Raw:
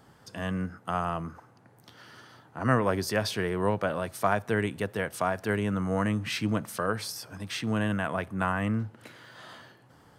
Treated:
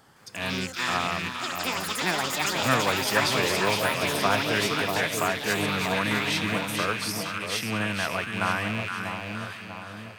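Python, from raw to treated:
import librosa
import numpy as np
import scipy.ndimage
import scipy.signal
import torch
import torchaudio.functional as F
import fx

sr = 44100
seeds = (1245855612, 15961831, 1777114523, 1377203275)

y = fx.rattle_buzz(x, sr, strikes_db=-39.0, level_db=-25.0)
y = fx.tilt_shelf(y, sr, db=-4.5, hz=740.0)
y = fx.echo_split(y, sr, split_hz=1100.0, low_ms=640, high_ms=468, feedback_pct=52, wet_db=-5)
y = fx.echo_pitch(y, sr, ms=162, semitones=6, count=3, db_per_echo=-3.0)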